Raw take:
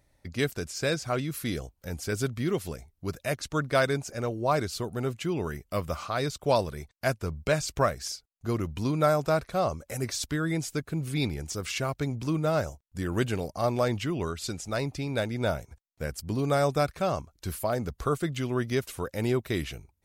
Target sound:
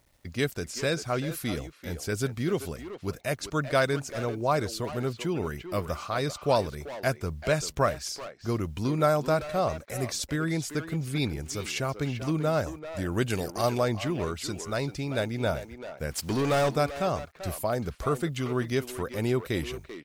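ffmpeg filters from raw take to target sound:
-filter_complex "[0:a]asettb=1/sr,asplit=3[s0][s1][s2];[s0]atrim=end=13.304[s3];[s1]atrim=start=13.3:end=13.78,asetpts=PTS-STARTPTS,afade=t=in:d=0.004:c=qsin,afade=t=out:st=0.476:d=0.004:c=qsin,highshelf=f=2800:g=10[s4];[s2]atrim=start=13.776[s5];[s3][s4]acrossfade=d=0.004:c1=hsin:c2=qsin[s6];[s6][s5]acrossfade=d=0.004:c1=qsin:c2=hsin,acrusher=bits=10:mix=0:aa=0.000001,asettb=1/sr,asplit=3[s7][s8][s9];[s7]atrim=end=16.114[s10];[s8]atrim=start=16.11:end=16.69,asetpts=PTS-STARTPTS,afade=t=in:d=0.004:c=qsin,afade=t=out:st=0.576:d=0.004:c=qsin,asplit=2[s11][s12];[s12]highpass=f=720:p=1,volume=11.2,asoftclip=type=tanh:threshold=0.1[s13];[s11][s13]amix=inputs=2:normalize=0,lowpass=f=6900:p=1,volume=0.501[s14];[s9]atrim=start=16.686[s15];[s10][s14]acrossfade=d=0.004:c1=hsin:c2=qsin[s16];[s16][s15]acrossfade=d=0.004:c1=qsin:c2=hsin,asplit=2[s17][s18];[s18]adelay=390,highpass=300,lowpass=3400,asoftclip=type=hard:threshold=0.0376,volume=0.447[s19];[s17][s19]amix=inputs=2:normalize=0"

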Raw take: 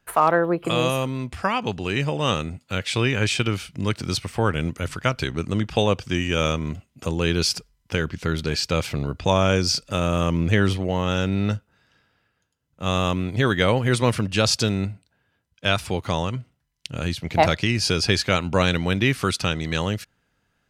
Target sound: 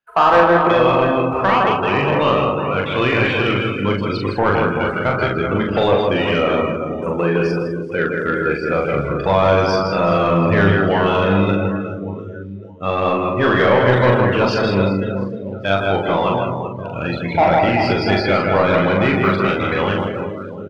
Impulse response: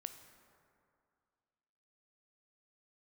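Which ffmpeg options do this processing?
-filter_complex "[0:a]deesser=0.9,asettb=1/sr,asplit=3[s0][s1][s2];[s0]atrim=end=6.384[s3];[s1]atrim=start=6.38:end=8.83,asetpts=PTS-STARTPTS,afade=t=in:d=0.004:c=qsin,afade=t=out:st=2.446:d=0.004:c=qsin,equalizer=f=100:t=o:w=0.67:g=-9,equalizer=f=4000:t=o:w=0.67:g=-10,equalizer=f=10000:t=o:w=0.67:g=7[s4];[s2]atrim=start=8.826[s5];[s3][s4]acrossfade=d=0.004:c1=hsin:c2=qsin[s6];[s6][s5]acrossfade=d=0.004:c1=qsin:c2=hsin,aecho=1:1:160|384|697.6|1137|1751:0.631|0.398|0.251|0.158|0.1[s7];[1:a]atrim=start_sample=2205[s8];[s7][s8]afir=irnorm=-1:irlink=0,afftdn=nr=25:nf=-37,asplit=2[s9][s10];[s10]highpass=f=720:p=1,volume=7.08,asoftclip=type=tanh:threshold=0.376[s11];[s9][s11]amix=inputs=2:normalize=0,lowpass=f=3600:p=1,volume=0.501,asplit=2[s12][s13];[s13]adelay=41,volume=0.708[s14];[s12][s14]amix=inputs=2:normalize=0,volume=1.68"

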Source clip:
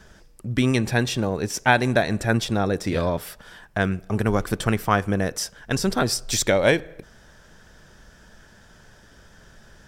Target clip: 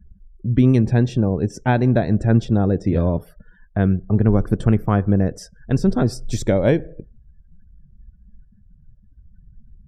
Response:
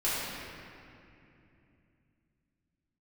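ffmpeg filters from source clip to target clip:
-af "afftdn=nr=33:nf=-39,tiltshelf=f=660:g=10,volume=0.891"

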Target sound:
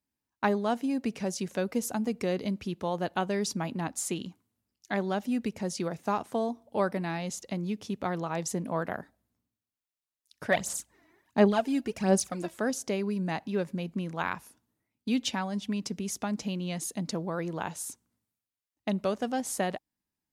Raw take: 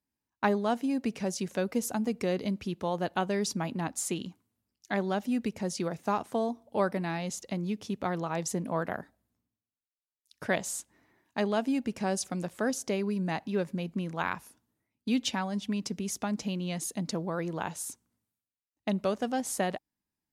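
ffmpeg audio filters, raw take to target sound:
-filter_complex "[0:a]asplit=3[s0][s1][s2];[s0]afade=t=out:st=10.51:d=0.02[s3];[s1]aphaser=in_gain=1:out_gain=1:delay=3.1:decay=0.65:speed=1.4:type=sinusoidal,afade=t=in:st=10.51:d=0.02,afade=t=out:st=12.55:d=0.02[s4];[s2]afade=t=in:st=12.55:d=0.02[s5];[s3][s4][s5]amix=inputs=3:normalize=0"

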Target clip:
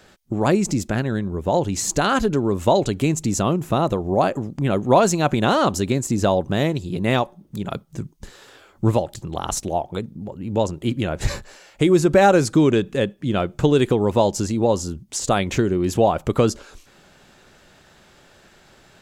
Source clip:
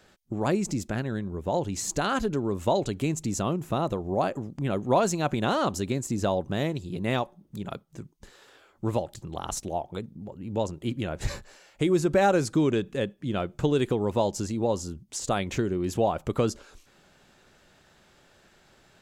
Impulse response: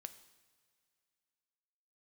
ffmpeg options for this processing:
-filter_complex "[0:a]asettb=1/sr,asplit=3[s0][s1][s2];[s0]atrim=end=7.744[s3];[s1]atrim=start=7.74:end=8.92,asetpts=PTS-STARTPTS,afade=t=in:d=0.004:c=qsin,afade=t=out:st=1.176:d=0.004:c=qsin,bass=f=250:g=5,treble=f=4000:g=2[s4];[s2]atrim=start=8.916[s5];[s3][s4]acrossfade=d=0.004:c1=hsin:c2=qsin[s6];[s6][s5]acrossfade=d=0.004:c1=qsin:c2=hsin,volume=2.37"

